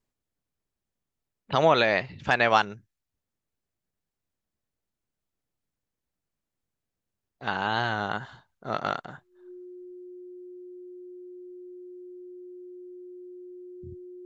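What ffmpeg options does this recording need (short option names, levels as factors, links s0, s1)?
-af "bandreject=f=360:w=30"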